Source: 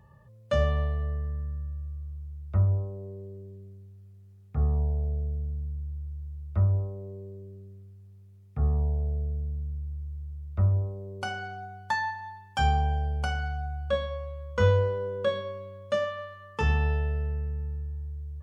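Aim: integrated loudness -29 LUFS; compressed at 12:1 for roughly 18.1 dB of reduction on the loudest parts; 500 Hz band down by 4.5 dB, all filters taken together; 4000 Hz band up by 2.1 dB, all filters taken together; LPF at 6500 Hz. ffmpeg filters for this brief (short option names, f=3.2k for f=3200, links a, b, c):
-af "lowpass=6.5k,equalizer=f=500:t=o:g=-5,equalizer=f=4k:t=o:g=3.5,acompressor=threshold=-38dB:ratio=12,volume=14dB"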